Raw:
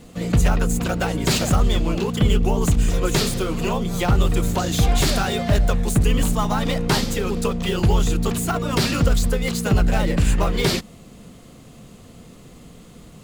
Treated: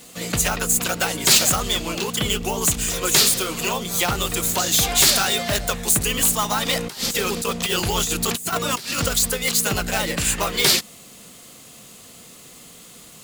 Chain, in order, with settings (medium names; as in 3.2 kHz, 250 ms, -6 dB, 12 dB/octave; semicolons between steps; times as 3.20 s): tilt EQ +3.5 dB/octave; 6.73–9.06 s: compressor with a negative ratio -24 dBFS, ratio -0.5; trim +1 dB